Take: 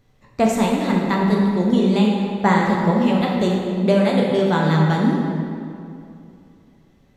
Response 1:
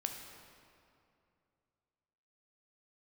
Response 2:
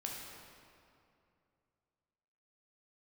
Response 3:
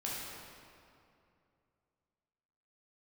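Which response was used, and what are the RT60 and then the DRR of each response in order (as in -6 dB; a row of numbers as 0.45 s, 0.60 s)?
2; 2.6 s, 2.6 s, 2.6 s; 3.5 dB, -2.0 dB, -6.0 dB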